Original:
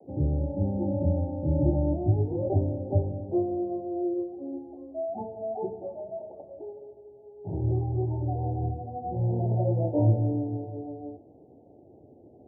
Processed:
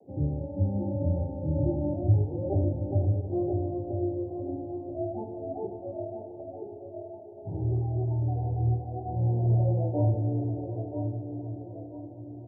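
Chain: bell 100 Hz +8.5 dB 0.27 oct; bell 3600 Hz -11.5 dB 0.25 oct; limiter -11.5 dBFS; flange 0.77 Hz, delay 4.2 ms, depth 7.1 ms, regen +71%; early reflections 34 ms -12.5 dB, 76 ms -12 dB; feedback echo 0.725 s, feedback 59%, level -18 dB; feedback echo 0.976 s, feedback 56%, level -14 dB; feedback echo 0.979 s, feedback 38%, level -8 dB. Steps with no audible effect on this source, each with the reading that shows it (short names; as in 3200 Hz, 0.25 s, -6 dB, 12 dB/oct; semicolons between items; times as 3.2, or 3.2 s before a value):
bell 3600 Hz: input band ends at 910 Hz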